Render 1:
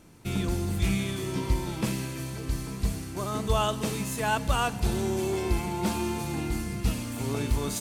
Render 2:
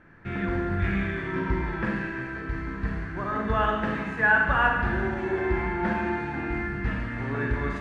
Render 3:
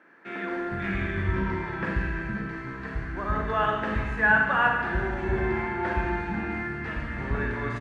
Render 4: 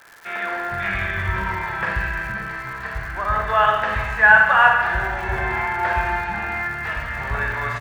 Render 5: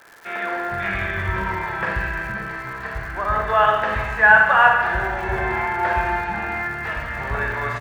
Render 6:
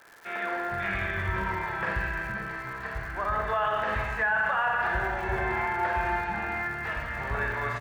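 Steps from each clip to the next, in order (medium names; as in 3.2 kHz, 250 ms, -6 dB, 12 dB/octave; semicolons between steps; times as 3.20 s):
resonant low-pass 1.7 kHz, resonance Q 8.9; Schroeder reverb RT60 1.2 s, combs from 33 ms, DRR 1 dB; trim -2.5 dB
bands offset in time highs, lows 460 ms, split 250 Hz
FFT filter 120 Hz 0 dB, 280 Hz -13 dB, 680 Hz +7 dB; crackle 220 per s -36 dBFS; trim +2 dB
peaking EQ 380 Hz +5.5 dB 2.1 oct; trim -1.5 dB
peak limiter -12.5 dBFS, peak gain reduction 11 dB; trim -5.5 dB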